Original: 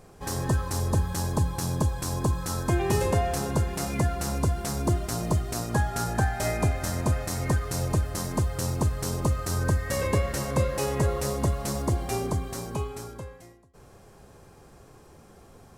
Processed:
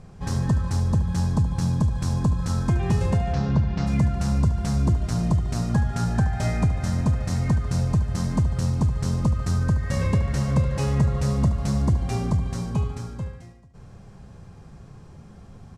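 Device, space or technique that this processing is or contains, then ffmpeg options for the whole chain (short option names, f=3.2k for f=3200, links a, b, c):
jukebox: -filter_complex "[0:a]lowpass=6.7k,lowshelf=f=250:t=q:w=1.5:g=8.5,acompressor=threshold=-19dB:ratio=3,asplit=3[a][b][c];[a]afade=t=out:st=3.32:d=0.02[d];[b]lowpass=f=5.1k:w=0.5412,lowpass=f=5.1k:w=1.3066,afade=t=in:st=3.32:d=0.02,afade=t=out:st=3.86:d=0.02[e];[c]afade=t=in:st=3.86:d=0.02[f];[d][e][f]amix=inputs=3:normalize=0,aecho=1:1:73|146|219|292|365:0.237|0.126|0.0666|0.0353|0.0187"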